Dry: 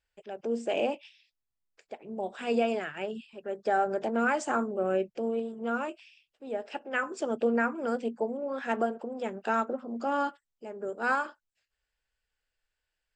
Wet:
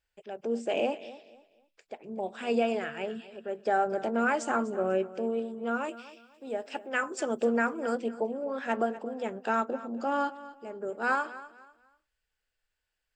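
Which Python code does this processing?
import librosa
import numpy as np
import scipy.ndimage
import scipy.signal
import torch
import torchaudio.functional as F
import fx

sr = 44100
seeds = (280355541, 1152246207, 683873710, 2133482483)

y = fx.high_shelf(x, sr, hz=6900.0, db=11.5, at=(5.84, 7.95))
y = fx.echo_feedback(y, sr, ms=247, feedback_pct=29, wet_db=-16.5)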